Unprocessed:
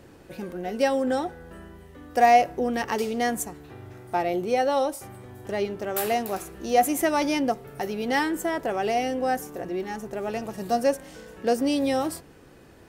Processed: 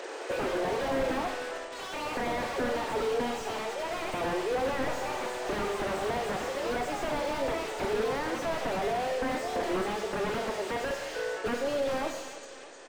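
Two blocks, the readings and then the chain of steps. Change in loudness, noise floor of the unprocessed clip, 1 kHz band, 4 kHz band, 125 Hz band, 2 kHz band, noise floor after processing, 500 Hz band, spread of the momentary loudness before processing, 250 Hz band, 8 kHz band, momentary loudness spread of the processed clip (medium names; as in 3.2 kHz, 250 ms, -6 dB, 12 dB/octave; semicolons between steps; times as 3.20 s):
-6.0 dB, -50 dBFS, -7.5 dB, -1.5 dB, -2.0 dB, -2.5 dB, -42 dBFS, -4.0 dB, 17 LU, -8.0 dB, -6.0 dB, 5 LU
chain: knee-point frequency compression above 3.6 kHz 1.5:1; steep high-pass 400 Hz 36 dB/octave; in parallel at +2 dB: compression, threshold -33 dBFS, peak gain reduction 19 dB; on the sum: peak limiter -17.5 dBFS, peak gain reduction 11.5 dB; gain riding 0.5 s; integer overflow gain 21 dB; ever faster or slower copies 214 ms, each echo +4 st, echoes 3, each echo -6 dB; brick-wall FIR low-pass 9 kHz; on a send: feedback delay 307 ms, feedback 54%, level -17 dB; on the sum: Schroeder reverb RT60 0.89 s, combs from 26 ms, DRR 7 dB; slew-rate limiter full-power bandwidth 41 Hz; trim -1.5 dB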